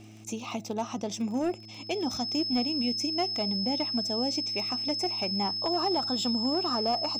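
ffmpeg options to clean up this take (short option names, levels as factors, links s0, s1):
-af "adeclick=t=4,bandreject=f=108.3:t=h:w=4,bandreject=f=216.6:t=h:w=4,bandreject=f=324.9:t=h:w=4,bandreject=f=5200:w=30"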